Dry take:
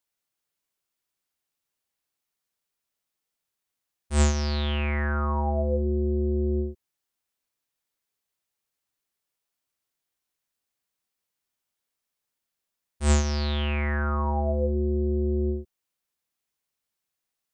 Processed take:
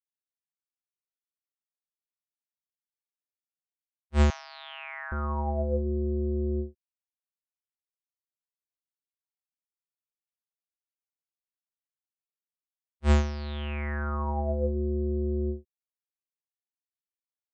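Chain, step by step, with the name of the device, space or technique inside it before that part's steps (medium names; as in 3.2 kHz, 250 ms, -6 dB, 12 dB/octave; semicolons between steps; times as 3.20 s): hearing-loss simulation (low-pass 3.4 kHz 12 dB/octave; expander -21 dBFS); 4.30–5.12 s: steep high-pass 660 Hz 72 dB/octave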